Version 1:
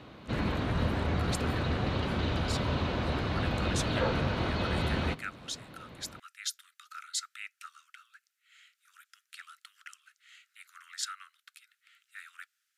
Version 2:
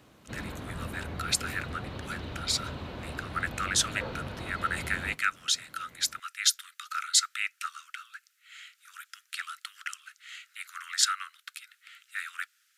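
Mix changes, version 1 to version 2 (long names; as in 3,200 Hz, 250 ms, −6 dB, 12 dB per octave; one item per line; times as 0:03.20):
speech +11.5 dB
background −8.5 dB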